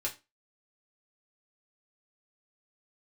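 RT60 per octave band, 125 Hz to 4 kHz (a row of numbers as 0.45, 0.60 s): 0.25, 0.30, 0.30, 0.25, 0.25, 0.25 s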